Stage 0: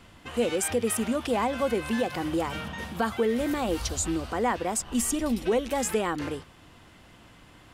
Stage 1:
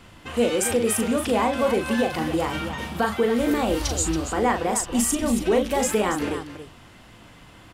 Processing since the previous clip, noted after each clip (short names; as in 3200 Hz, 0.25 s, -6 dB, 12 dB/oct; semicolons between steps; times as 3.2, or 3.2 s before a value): loudspeakers at several distances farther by 13 m -6 dB, 96 m -10 dB; gain +3.5 dB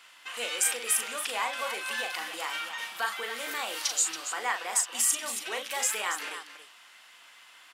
HPF 1400 Hz 12 dB/oct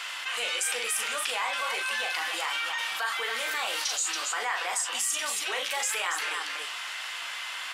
weighting filter A; flange 0.36 Hz, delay 9.8 ms, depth 4.6 ms, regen -46%; fast leveller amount 70%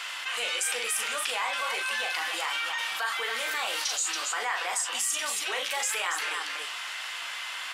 nothing audible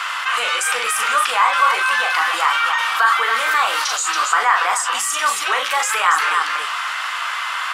bell 1200 Hz +14.5 dB 0.98 oct; gain +6 dB